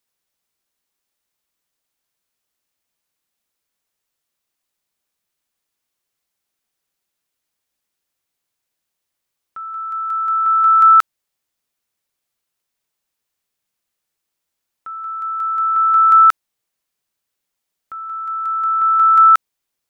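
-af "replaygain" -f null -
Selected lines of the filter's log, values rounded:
track_gain = -3.0 dB
track_peak = 0.397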